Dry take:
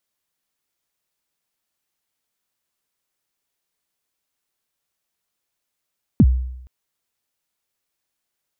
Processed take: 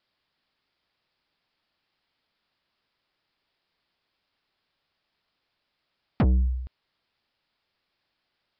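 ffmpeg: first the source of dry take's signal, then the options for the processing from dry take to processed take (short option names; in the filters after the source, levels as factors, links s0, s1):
-f lavfi -i "aevalsrc='0.501*pow(10,-3*t/0.81)*sin(2*PI*(290*0.05/log(63/290)*(exp(log(63/290)*min(t,0.05)/0.05)-1)+63*max(t-0.05,0)))':d=0.47:s=44100"
-af "equalizer=f=450:t=o:w=0.33:g=-2,acontrast=73,aresample=11025,asoftclip=type=tanh:threshold=0.119,aresample=44100"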